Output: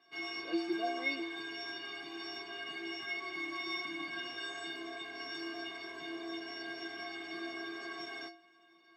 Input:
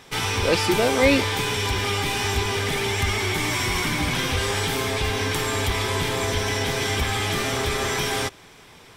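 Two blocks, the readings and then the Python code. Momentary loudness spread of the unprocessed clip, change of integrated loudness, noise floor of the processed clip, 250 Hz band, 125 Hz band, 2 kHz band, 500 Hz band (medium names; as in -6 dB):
4 LU, -17.0 dB, -64 dBFS, -13.5 dB, under -40 dB, -14.5 dB, -19.5 dB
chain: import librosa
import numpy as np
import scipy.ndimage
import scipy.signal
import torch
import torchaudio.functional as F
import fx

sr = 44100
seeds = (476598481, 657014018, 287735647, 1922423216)

y = scipy.signal.sosfilt(scipy.signal.butter(4, 170.0, 'highpass', fs=sr, output='sos'), x)
y = fx.air_absorb(y, sr, metres=190.0)
y = fx.stiff_resonator(y, sr, f0_hz=330.0, decay_s=0.56, stiffness=0.03)
y = F.gain(torch.from_numpy(y), 4.5).numpy()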